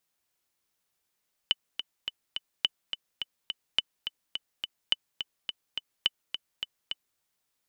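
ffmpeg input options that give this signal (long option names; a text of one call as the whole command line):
ffmpeg -f lavfi -i "aevalsrc='pow(10,(-9.5-9*gte(mod(t,4*60/211),60/211))/20)*sin(2*PI*3000*mod(t,60/211))*exp(-6.91*mod(t,60/211)/0.03)':duration=5.68:sample_rate=44100" out.wav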